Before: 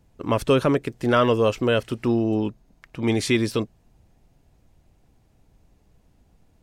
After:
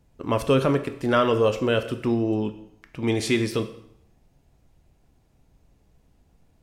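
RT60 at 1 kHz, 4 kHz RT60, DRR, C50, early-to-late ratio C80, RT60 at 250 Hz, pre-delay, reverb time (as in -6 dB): 0.70 s, 0.65 s, 8.0 dB, 12.0 dB, 14.5 dB, 0.70 s, 5 ms, 0.70 s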